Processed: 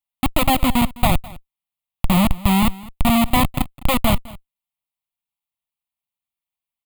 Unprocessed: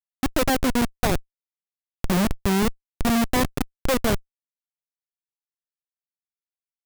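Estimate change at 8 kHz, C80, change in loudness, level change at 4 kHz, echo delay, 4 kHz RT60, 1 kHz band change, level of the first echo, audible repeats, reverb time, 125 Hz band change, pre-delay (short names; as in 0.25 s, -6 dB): +1.5 dB, none, +4.5 dB, +5.5 dB, 0.208 s, none, +7.0 dB, -20.5 dB, 1, none, +6.5 dB, none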